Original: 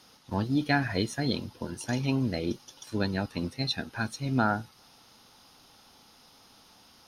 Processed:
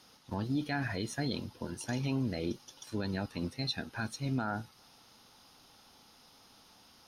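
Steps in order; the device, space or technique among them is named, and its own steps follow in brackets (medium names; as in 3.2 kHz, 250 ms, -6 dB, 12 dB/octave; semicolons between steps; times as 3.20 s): clipper into limiter (hard clipper -13 dBFS, distortion -45 dB; peak limiter -21 dBFS, peak gain reduction 8 dB); trim -3 dB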